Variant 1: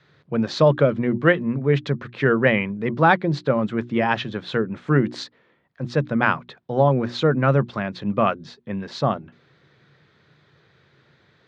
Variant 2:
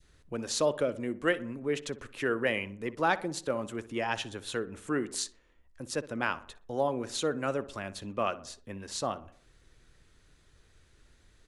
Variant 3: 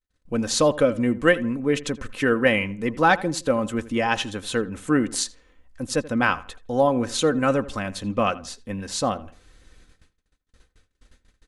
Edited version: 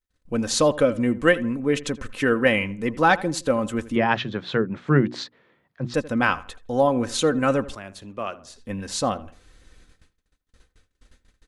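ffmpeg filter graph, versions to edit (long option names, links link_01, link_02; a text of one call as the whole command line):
ffmpeg -i take0.wav -i take1.wav -i take2.wav -filter_complex "[2:a]asplit=3[link_01][link_02][link_03];[link_01]atrim=end=3.962[link_04];[0:a]atrim=start=3.958:end=5.942[link_05];[link_02]atrim=start=5.938:end=7.752[link_06];[1:a]atrim=start=7.748:end=8.562[link_07];[link_03]atrim=start=8.558[link_08];[link_04][link_05]acrossfade=duration=0.004:curve1=hsin:curve2=hsin[link_09];[link_09][link_06]acrossfade=duration=0.004:curve1=hsin:curve2=hsin[link_10];[link_10][link_07]acrossfade=duration=0.004:curve1=hsin:curve2=hsin[link_11];[link_11][link_08]acrossfade=duration=0.004:curve1=hsin:curve2=hsin" out.wav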